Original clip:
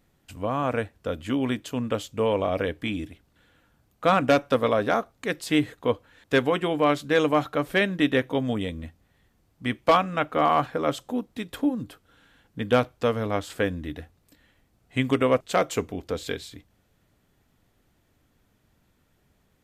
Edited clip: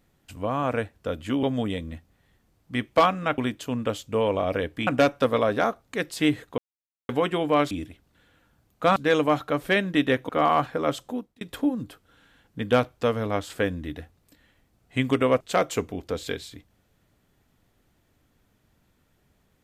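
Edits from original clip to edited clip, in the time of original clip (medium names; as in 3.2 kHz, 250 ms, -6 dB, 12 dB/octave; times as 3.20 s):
2.92–4.17 s: move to 7.01 s
5.88–6.39 s: mute
8.34–10.29 s: move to 1.43 s
11.06–11.41 s: fade out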